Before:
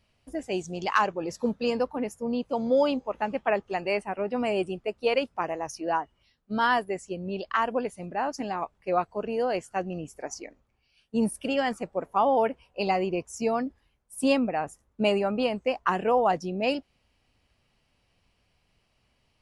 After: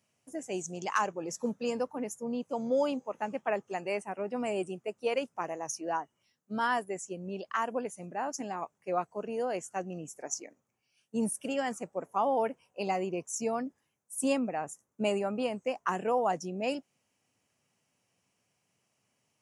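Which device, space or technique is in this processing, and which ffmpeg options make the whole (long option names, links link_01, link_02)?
budget condenser microphone: -af "highpass=frequency=120:width=0.5412,highpass=frequency=120:width=1.3066,highshelf=frequency=5300:width_type=q:width=3:gain=6.5,volume=-5.5dB"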